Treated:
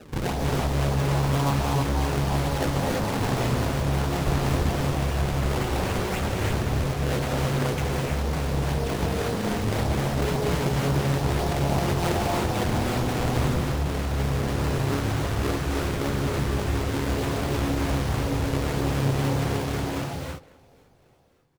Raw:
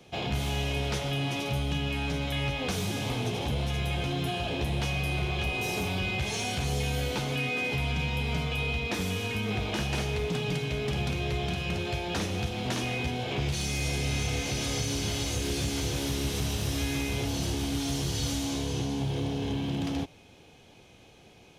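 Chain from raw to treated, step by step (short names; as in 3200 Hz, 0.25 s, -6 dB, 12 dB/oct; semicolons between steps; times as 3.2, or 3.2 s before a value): ending faded out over 6.97 s; 0.95–1.68 comb 1 ms, depth 70%; limiter -27.5 dBFS, peak gain reduction 9.5 dB; vocal rider within 4 dB 2 s; LFO low-pass saw down 1.8 Hz 530–1900 Hz; decimation with a swept rate 39×, swing 160% 1.9 Hz; speakerphone echo 0.21 s, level -19 dB; non-linear reverb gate 0.36 s rising, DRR -1.5 dB; Doppler distortion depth 0.88 ms; gain +7 dB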